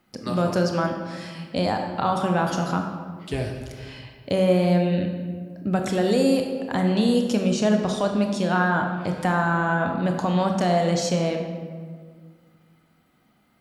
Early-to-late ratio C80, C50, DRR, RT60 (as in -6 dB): 6.5 dB, 5.0 dB, 3.0 dB, 1.8 s